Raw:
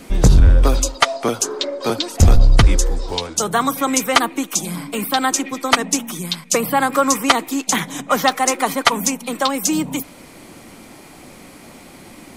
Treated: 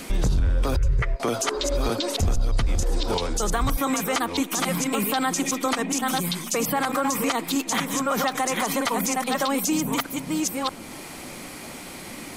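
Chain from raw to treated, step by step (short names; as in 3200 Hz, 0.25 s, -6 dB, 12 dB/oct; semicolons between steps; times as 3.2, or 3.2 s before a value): reverse delay 0.629 s, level -6.5 dB; 0.76–1.2 EQ curve 130 Hz 0 dB, 250 Hz -28 dB, 400 Hz -3 dB, 760 Hz -20 dB, 2000 Hz -2 dB, 3700 Hz -25 dB; compressor, threshold -14 dBFS, peak gain reduction 10.5 dB; limiter -15 dBFS, peak gain reduction 10.5 dB; mismatched tape noise reduction encoder only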